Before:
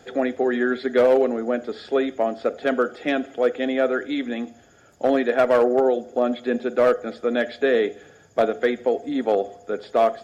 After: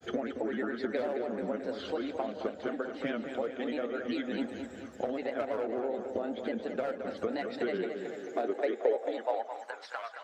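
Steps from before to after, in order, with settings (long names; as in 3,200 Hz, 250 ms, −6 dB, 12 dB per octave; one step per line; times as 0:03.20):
downward compressor 12 to 1, threshold −30 dBFS, peak gain reduction 17.5 dB
granular cloud, spray 15 ms, pitch spread up and down by 3 semitones
tape delay 219 ms, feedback 66%, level −7 dB, low-pass 4,700 Hz
high-pass filter sweep 74 Hz → 1,300 Hz, 0:07.06–0:09.97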